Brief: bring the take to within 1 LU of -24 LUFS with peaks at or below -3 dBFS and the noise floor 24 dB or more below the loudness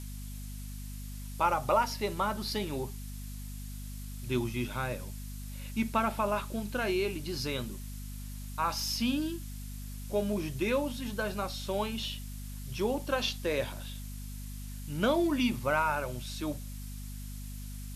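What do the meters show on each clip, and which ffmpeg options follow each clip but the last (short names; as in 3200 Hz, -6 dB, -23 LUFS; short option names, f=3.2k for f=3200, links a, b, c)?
hum 50 Hz; harmonics up to 250 Hz; hum level -39 dBFS; noise floor -41 dBFS; noise floor target -58 dBFS; loudness -34.0 LUFS; peak -14.0 dBFS; loudness target -24.0 LUFS
-> -af "bandreject=f=50:t=h:w=6,bandreject=f=100:t=h:w=6,bandreject=f=150:t=h:w=6,bandreject=f=200:t=h:w=6,bandreject=f=250:t=h:w=6"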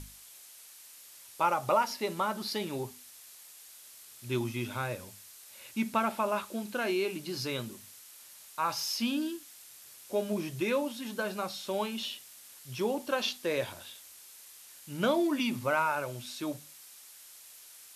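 hum none; noise floor -53 dBFS; noise floor target -57 dBFS
-> -af "afftdn=nr=6:nf=-53"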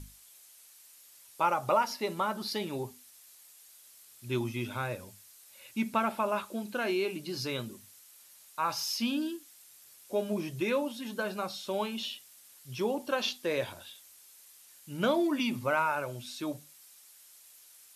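noise floor -57 dBFS; loudness -32.5 LUFS; peak -14.0 dBFS; loudness target -24.0 LUFS
-> -af "volume=8.5dB"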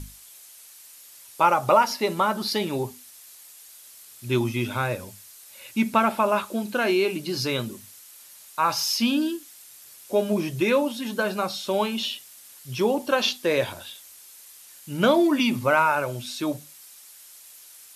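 loudness -24.0 LUFS; peak -5.5 dBFS; noise floor -48 dBFS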